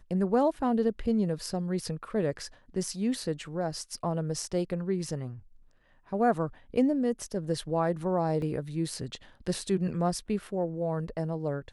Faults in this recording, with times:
8.42 s: dropout 2.1 ms

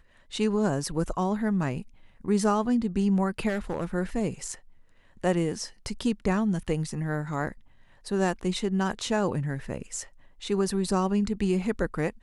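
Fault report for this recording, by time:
3.48–3.85 s: clipped -24.5 dBFS

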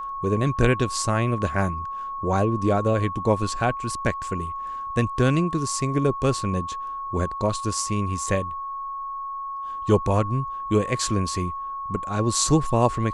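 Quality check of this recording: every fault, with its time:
whine 1.1 kHz -29 dBFS

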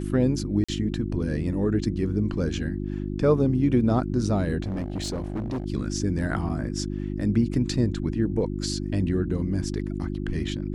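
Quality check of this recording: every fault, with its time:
hum 50 Hz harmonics 7 -30 dBFS
0.64–0.69 s: dropout 45 ms
4.62–5.66 s: clipped -25.5 dBFS
6.49–6.50 s: dropout 5 ms

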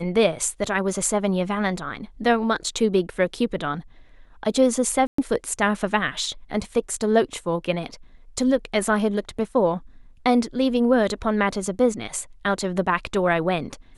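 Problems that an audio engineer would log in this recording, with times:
5.07–5.18 s: dropout 114 ms

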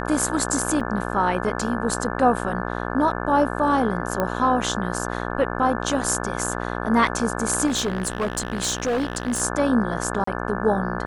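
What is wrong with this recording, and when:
buzz 60 Hz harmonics 29 -28 dBFS
0.80–0.81 s: dropout 5.5 ms
4.20 s: pop -11 dBFS
7.66–9.42 s: clipped -19.5 dBFS
10.24–10.27 s: dropout 34 ms

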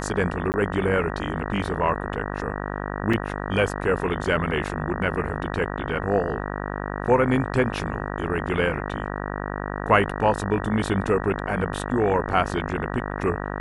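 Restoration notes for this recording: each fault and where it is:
buzz 50 Hz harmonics 38 -30 dBFS
0.52–0.54 s: dropout 19 ms
3.13 s: dropout 4.6 ms

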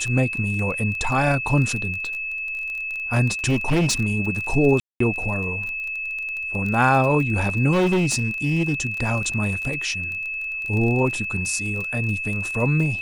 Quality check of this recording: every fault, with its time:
crackle 22 per s -26 dBFS
whine 2.6 kHz -26 dBFS
3.47–3.94 s: clipped -16 dBFS
4.80–5.00 s: dropout 204 ms
7.72–8.74 s: clipped -16 dBFS

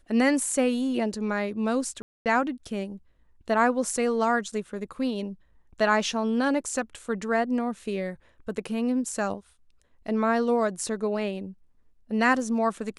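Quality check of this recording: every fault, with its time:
2.02–2.26 s: dropout 238 ms

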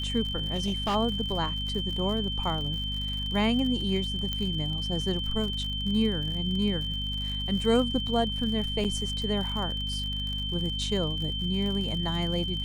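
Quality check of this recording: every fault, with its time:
crackle 68 per s -34 dBFS
hum 50 Hz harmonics 5 -34 dBFS
whine 3.1 kHz -32 dBFS
0.54–0.96 s: clipped -23.5 dBFS
4.33 s: pop -17 dBFS
8.84–8.85 s: dropout 7.3 ms

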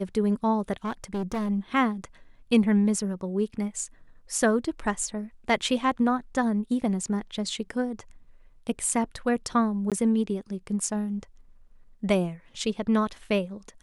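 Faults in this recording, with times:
0.85–1.50 s: clipped -25.5 dBFS
9.90–9.92 s: dropout 17 ms

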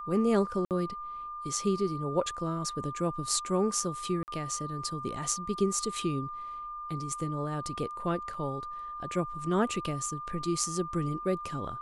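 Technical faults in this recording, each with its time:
whine 1.2 kHz -37 dBFS
0.65–0.71 s: dropout 58 ms
4.23–4.28 s: dropout 49 ms
8.34 s: dropout 3.2 ms

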